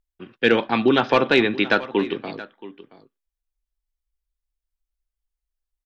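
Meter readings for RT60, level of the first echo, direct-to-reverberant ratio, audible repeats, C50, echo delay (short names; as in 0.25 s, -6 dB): none, -17.5 dB, none, 1, none, 0.675 s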